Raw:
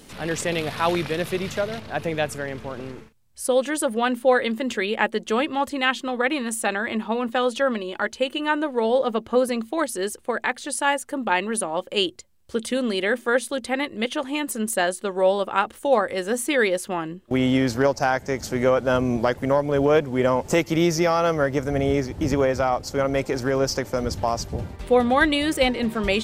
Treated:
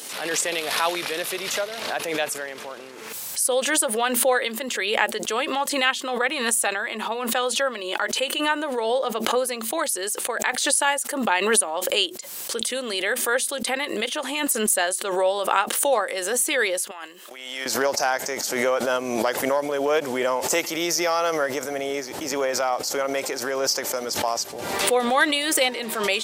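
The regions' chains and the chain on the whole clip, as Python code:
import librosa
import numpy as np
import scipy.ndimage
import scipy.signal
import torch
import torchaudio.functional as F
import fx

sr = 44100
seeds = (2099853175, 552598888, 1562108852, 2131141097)

y = fx.chain(x, sr, fx.highpass(hz=1400.0, slope=6),
    fx.over_compress(threshold_db=-39.0, ratio=-1.0), at=(16.91, 17.66))
y = scipy.signal.sosfilt(scipy.signal.butter(2, 470.0, 'highpass', fs=sr, output='sos'), y)
y = fx.high_shelf(y, sr, hz=4400.0, db=10.5)
y = fx.pre_swell(y, sr, db_per_s=43.0)
y = y * librosa.db_to_amplitude(-1.5)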